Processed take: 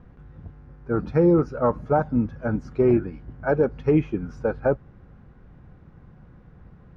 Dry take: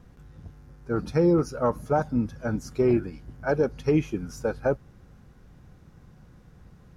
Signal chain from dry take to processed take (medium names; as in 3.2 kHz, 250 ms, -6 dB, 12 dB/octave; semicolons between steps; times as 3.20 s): low-pass 2.1 kHz 12 dB/octave; trim +3 dB